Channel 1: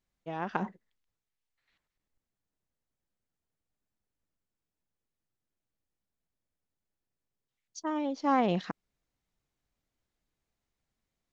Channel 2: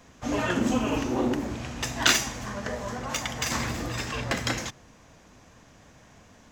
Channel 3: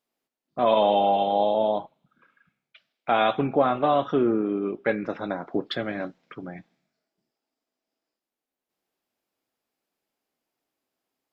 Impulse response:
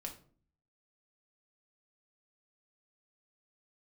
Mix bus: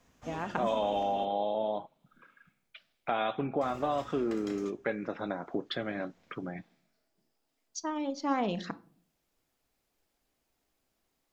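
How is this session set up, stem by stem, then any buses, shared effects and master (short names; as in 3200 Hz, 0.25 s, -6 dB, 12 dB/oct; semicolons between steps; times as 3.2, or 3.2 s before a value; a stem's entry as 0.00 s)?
-0.5 dB, 0.00 s, bus A, send -7 dB, reverb removal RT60 0.55 s; high shelf 4500 Hz +7.5 dB
-14.5 dB, 0.00 s, muted 1.25–3.61, no bus, send -11 dB, auto duck -9 dB, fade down 0.40 s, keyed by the third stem
+2.0 dB, 0.00 s, bus A, no send, dry
bus A: 0.0 dB, compressor 2:1, threshold -37 dBFS, peak gain reduction 13 dB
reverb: on, RT60 0.45 s, pre-delay 4 ms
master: dry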